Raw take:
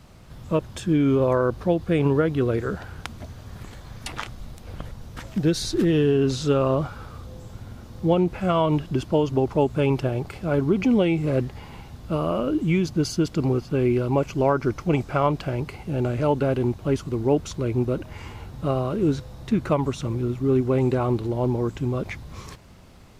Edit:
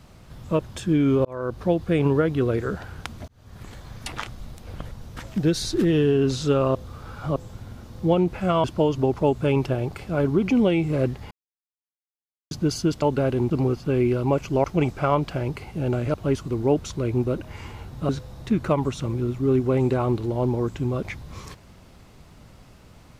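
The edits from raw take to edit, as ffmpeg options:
ffmpeg -i in.wav -filter_complex "[0:a]asplit=13[link_01][link_02][link_03][link_04][link_05][link_06][link_07][link_08][link_09][link_10][link_11][link_12][link_13];[link_01]atrim=end=1.25,asetpts=PTS-STARTPTS,afade=type=out:start_time=1.246:duration=0.004:curve=hsin[link_14];[link_02]atrim=start=1.25:end=3.28,asetpts=PTS-STARTPTS,afade=type=in:duration=0.41,afade=type=out:start_time=2.026:duration=0.004:curve=hsin[link_15];[link_03]atrim=start=3.28:end=6.752,asetpts=PTS-STARTPTS,afade=type=in:duration=0.43[link_16];[link_04]atrim=start=6.748:end=7.362,asetpts=PTS-STARTPTS,areverse[link_17];[link_05]atrim=start=7.358:end=8.642[link_18];[link_06]atrim=start=8.978:end=11.65,asetpts=PTS-STARTPTS,afade=type=out:start_time=2.668:duration=0.004:curve=hsin[link_19];[link_07]atrim=start=11.65:end=12.85,asetpts=PTS-STARTPTS,volume=0[link_20];[link_08]atrim=start=12.85:end=13.362,asetpts=PTS-STARTPTS,afade=type=in:duration=0.004:curve=hsin[link_21];[link_09]atrim=start=16.258:end=16.752[link_22];[link_10]atrim=start=13.358:end=14.492[link_23];[link_11]atrim=start=14.758:end=16.262[link_24];[link_12]atrim=start=16.748:end=18.702[link_25];[link_13]atrim=start=19.098[link_26];[link_14][link_15][link_16]concat=n=3:v=0:a=1[link_27];[link_27][link_17]acrossfade=duration=0.004:curve1=hsin:curve2=hsin[link_28];[link_28][link_18]acrossfade=duration=0.004:curve1=hsin:curve2=hsin[link_29];[link_19][link_20][link_21]concat=n=3:v=0:a=1[link_30];[link_29][link_30]acrossfade=duration=0.004:curve1=hsin:curve2=hsin[link_31];[link_31][link_22]acrossfade=duration=0.004:curve1=hsin:curve2=hsin[link_32];[link_32][link_23]acrossfade=duration=0.004:curve1=hsin:curve2=hsin[link_33];[link_33][link_24]acrossfade=duration=0.004:curve1=hsin:curve2=hsin[link_34];[link_34][link_25]acrossfade=duration=0.004:curve1=hsin:curve2=hsin[link_35];[link_35][link_26]acrossfade=duration=0.004:curve1=hsin:curve2=hsin" out.wav

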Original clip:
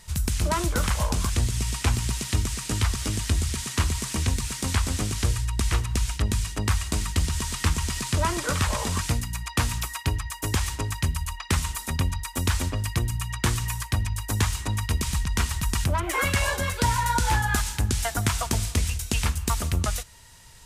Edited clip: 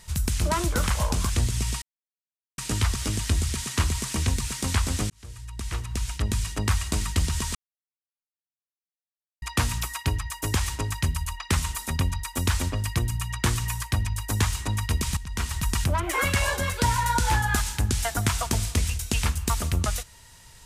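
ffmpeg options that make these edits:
ffmpeg -i in.wav -filter_complex "[0:a]asplit=7[link_01][link_02][link_03][link_04][link_05][link_06][link_07];[link_01]atrim=end=1.82,asetpts=PTS-STARTPTS,afade=type=out:start_time=1.816:duration=0.004:curve=hsin[link_08];[link_02]atrim=start=1.82:end=2.58,asetpts=PTS-STARTPTS,volume=0[link_09];[link_03]atrim=start=2.58:end=5.1,asetpts=PTS-STARTPTS,afade=type=in:duration=0.004:curve=hsin,afade=type=out:start_time=2.516:duration=0.004:curve=hsin[link_10];[link_04]atrim=start=5.1:end=7.55,asetpts=PTS-STARTPTS,afade=type=in:duration=1.4,afade=type=out:start_time=2.446:duration=0.004:curve=hsin[link_11];[link_05]atrim=start=7.55:end=9.42,asetpts=PTS-STARTPTS,volume=0[link_12];[link_06]atrim=start=9.42:end=15.17,asetpts=PTS-STARTPTS,afade=type=in:duration=0.004:curve=hsin,afade=type=out:start_time=5.746:duration=0.004:curve=hsin:silence=0.211349[link_13];[link_07]atrim=start=15.17,asetpts=PTS-STARTPTS,afade=type=in:duration=0.46:silence=0.211349[link_14];[link_08][link_09][link_10][link_11][link_12][link_13][link_14]concat=n=7:v=0:a=1" out.wav

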